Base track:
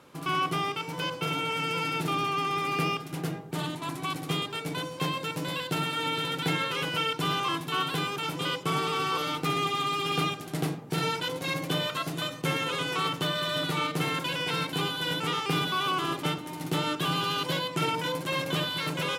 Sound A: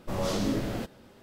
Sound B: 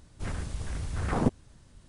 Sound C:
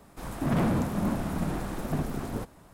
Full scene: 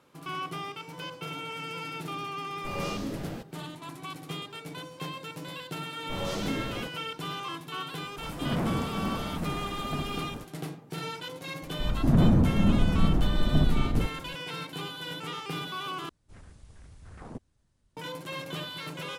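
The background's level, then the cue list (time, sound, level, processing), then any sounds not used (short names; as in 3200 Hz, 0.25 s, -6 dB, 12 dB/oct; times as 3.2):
base track -7.5 dB
2.57 add A -6.5 dB
6.02 add A -4 dB
8 add C -4 dB + ending faded out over 0.58 s
11.62 add C -3.5 dB + tilt -3.5 dB/oct
16.09 replace with B -16.5 dB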